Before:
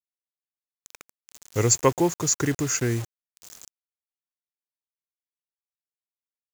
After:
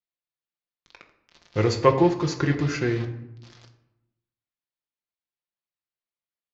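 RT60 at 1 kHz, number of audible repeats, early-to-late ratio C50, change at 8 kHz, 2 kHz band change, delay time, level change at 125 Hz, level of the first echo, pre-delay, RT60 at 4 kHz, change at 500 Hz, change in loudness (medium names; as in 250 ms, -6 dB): 0.90 s, no echo, 10.5 dB, -18.5 dB, +2.0 dB, no echo, +2.0 dB, no echo, 6 ms, 0.50 s, +3.0 dB, 0.0 dB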